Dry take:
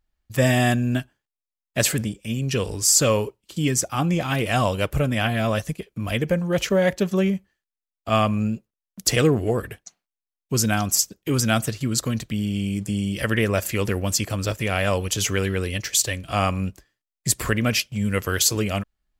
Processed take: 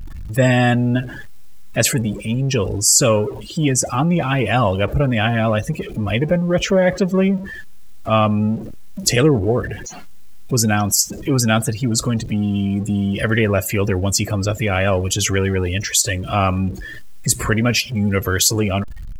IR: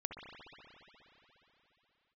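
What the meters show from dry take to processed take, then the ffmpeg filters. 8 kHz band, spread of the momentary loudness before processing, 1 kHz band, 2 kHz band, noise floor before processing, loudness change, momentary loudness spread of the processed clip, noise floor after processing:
+4.0 dB, 8 LU, +4.5 dB, +4.0 dB, below −85 dBFS, +4.5 dB, 9 LU, −32 dBFS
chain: -af "aeval=exprs='val(0)+0.5*0.0562*sgn(val(0))':channel_layout=same,afftdn=noise_reduction=20:noise_floor=-29,volume=3dB"

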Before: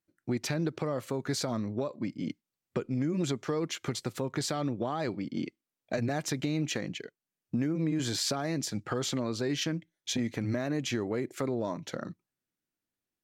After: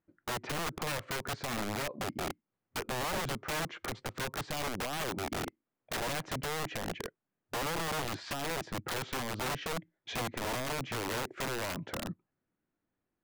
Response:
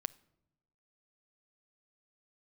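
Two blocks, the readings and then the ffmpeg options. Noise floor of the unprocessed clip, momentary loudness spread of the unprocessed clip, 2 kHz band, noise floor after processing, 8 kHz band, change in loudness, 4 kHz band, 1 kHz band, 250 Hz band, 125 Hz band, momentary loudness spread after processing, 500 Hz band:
below −85 dBFS, 8 LU, +4.0 dB, below −85 dBFS, −2.5 dB, −3.5 dB, −1.5 dB, +3.5 dB, −10.0 dB, −7.0 dB, 6 LU, −4.5 dB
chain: -af "lowpass=1500,acompressor=threshold=-43dB:ratio=2,aeval=exprs='(mod(75*val(0)+1,2)-1)/75':channel_layout=same,volume=8dB"

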